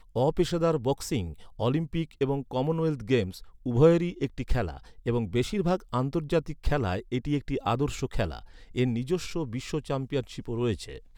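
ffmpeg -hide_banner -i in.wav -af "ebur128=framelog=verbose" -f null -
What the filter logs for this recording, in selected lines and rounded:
Integrated loudness:
  I:         -28.8 LUFS
  Threshold: -38.9 LUFS
Loudness range:
  LRA:         3.6 LU
  Threshold: -48.7 LUFS
  LRA low:   -30.9 LUFS
  LRA high:  -27.2 LUFS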